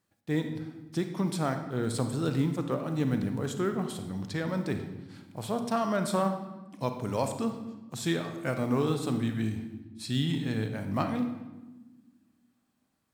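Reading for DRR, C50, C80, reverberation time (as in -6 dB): 6.5 dB, 7.5 dB, 10.5 dB, 1.2 s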